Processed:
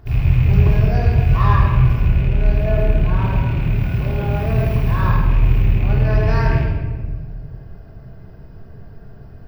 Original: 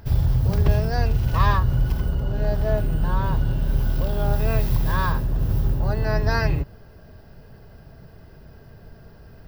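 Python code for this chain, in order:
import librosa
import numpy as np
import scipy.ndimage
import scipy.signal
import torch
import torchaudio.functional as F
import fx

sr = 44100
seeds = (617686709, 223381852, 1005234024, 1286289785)

y = fx.rattle_buzz(x, sr, strikes_db=-21.0, level_db=-20.0)
y = fx.high_shelf(y, sr, hz=2700.0, db=-9.5)
y = fx.room_shoebox(y, sr, seeds[0], volume_m3=1300.0, walls='mixed', distance_m=3.3)
y = F.gain(torch.from_numpy(y), -3.0).numpy()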